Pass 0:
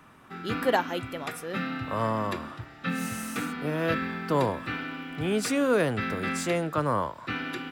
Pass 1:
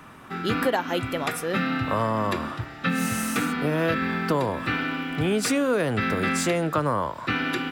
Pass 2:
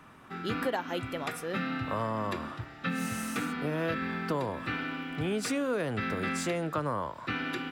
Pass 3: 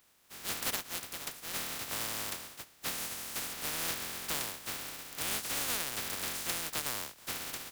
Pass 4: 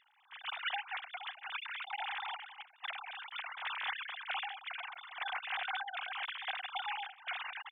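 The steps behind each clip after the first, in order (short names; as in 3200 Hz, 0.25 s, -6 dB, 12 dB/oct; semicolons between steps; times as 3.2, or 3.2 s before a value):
compressor 6:1, threshold -28 dBFS, peak gain reduction 9.5 dB; gain +8 dB
high shelf 9800 Hz -4.5 dB; gain -7.5 dB
spectral contrast lowered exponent 0.12; upward expander 1.5:1, over -49 dBFS; gain -2.5 dB
sine-wave speech; gain -3.5 dB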